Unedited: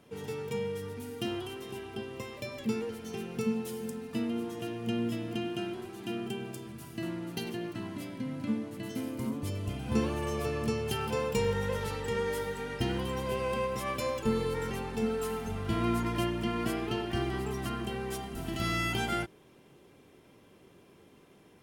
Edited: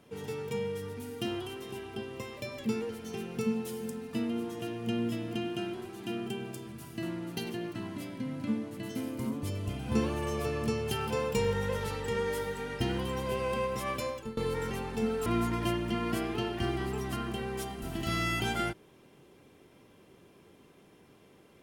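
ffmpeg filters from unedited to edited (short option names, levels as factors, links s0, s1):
-filter_complex "[0:a]asplit=3[s0][s1][s2];[s0]atrim=end=14.37,asetpts=PTS-STARTPTS,afade=t=out:st=13.95:d=0.42:silence=0.0944061[s3];[s1]atrim=start=14.37:end=15.262,asetpts=PTS-STARTPTS,afade=t=in:d=0.004:c=hsin:silence=0.0944061[s4];[s2]atrim=start=15.788[s5];[s3][s4]concat=n=2:v=0:a=1[s6];[s6][s5]acrossfade=d=0.004:c1=hsin:c2=hsin"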